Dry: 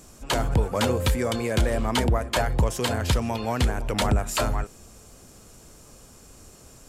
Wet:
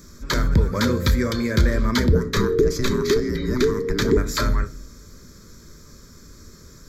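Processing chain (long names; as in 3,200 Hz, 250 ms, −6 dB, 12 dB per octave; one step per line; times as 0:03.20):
0:02.12–0:04.17: frequency shifter −500 Hz
phaser with its sweep stopped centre 2,800 Hz, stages 6
convolution reverb, pre-delay 5 ms, DRR 10.5 dB
level +5.5 dB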